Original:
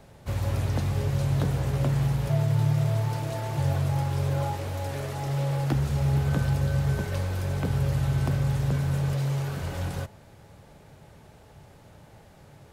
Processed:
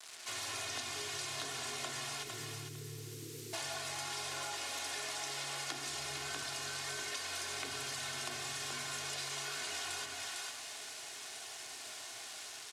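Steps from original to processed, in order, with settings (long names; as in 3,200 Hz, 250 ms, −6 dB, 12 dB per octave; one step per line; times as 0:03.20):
on a send at −5.5 dB: convolution reverb RT60 1.0 s, pre-delay 3 ms
on the sum: time-frequency box erased 0:02.24–0:03.53, 510–12,000 Hz
automatic gain control gain up to 6.5 dB
high-pass filter 110 Hz 12 dB per octave
comb filter 2.8 ms, depth 72%
bit reduction 8 bits
meter weighting curve ITU-R 468
feedback echo with a high-pass in the loop 453 ms, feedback 26%, high-pass 710 Hz, level −9 dB
downward compressor 6 to 1, threshold −32 dBFS, peak gain reduction 12.5 dB
low-shelf EQ 320 Hz −7.5 dB
level −5.5 dB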